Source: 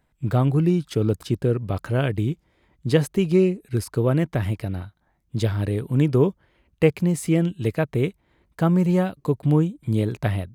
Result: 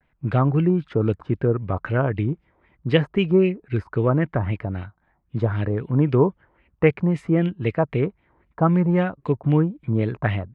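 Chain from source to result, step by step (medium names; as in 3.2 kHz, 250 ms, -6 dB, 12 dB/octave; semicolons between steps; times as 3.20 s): LFO low-pass sine 3.8 Hz 950–2700 Hz; vibrato 0.42 Hz 33 cents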